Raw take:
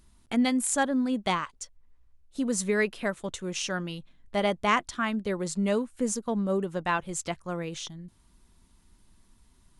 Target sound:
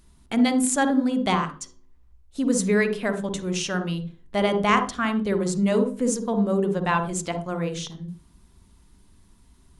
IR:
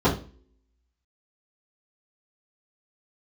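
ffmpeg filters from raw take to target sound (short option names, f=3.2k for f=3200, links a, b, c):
-filter_complex "[0:a]asplit=2[a][b];[1:a]atrim=start_sample=2205,adelay=45[c];[b][c]afir=irnorm=-1:irlink=0,volume=-24.5dB[d];[a][d]amix=inputs=2:normalize=0,volume=3dB"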